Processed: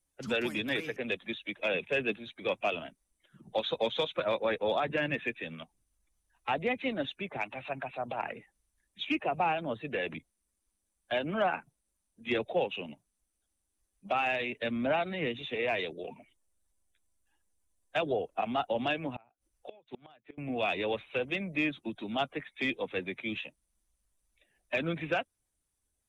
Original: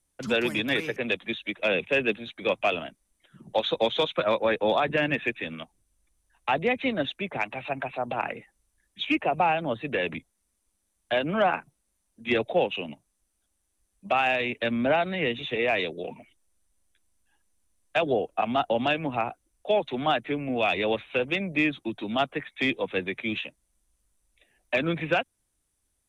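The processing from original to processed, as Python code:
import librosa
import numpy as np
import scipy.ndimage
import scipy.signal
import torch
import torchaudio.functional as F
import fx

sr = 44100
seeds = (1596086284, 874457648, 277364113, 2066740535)

y = fx.spec_quant(x, sr, step_db=15)
y = fx.gate_flip(y, sr, shuts_db=-22.0, range_db=-29, at=(19.14, 20.38))
y = y * librosa.db_to_amplitude(-5.5)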